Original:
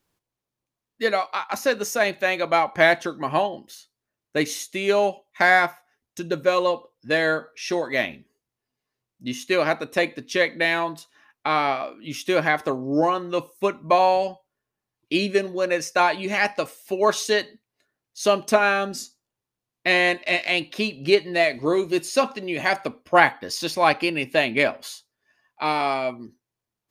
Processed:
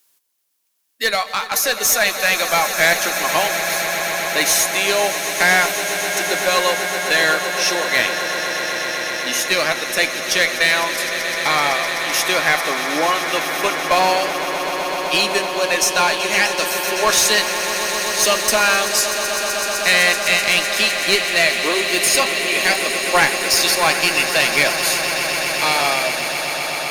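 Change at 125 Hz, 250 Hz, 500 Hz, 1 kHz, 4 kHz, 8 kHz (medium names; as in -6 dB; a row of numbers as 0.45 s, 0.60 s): +0.5 dB, -1.5 dB, +1.0 dB, +3.5 dB, +12.5 dB, +18.0 dB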